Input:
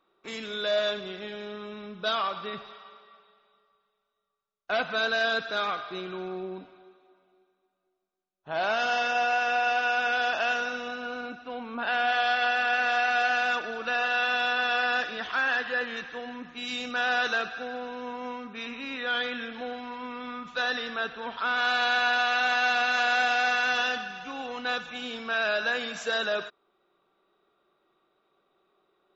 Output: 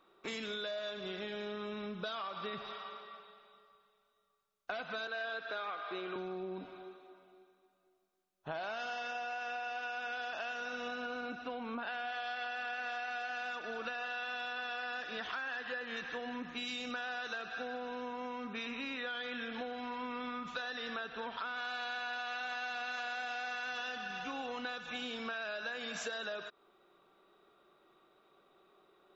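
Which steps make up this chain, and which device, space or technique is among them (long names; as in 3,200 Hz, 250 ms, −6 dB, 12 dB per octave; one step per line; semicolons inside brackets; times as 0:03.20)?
0:05.07–0:06.16: three-way crossover with the lows and the highs turned down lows −14 dB, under 290 Hz, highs −14 dB, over 3,700 Hz
serial compression, peaks first (downward compressor, threshold −35 dBFS, peak gain reduction 13 dB; downward compressor 2 to 1, threshold −46 dBFS, peak gain reduction 7.5 dB)
level +4 dB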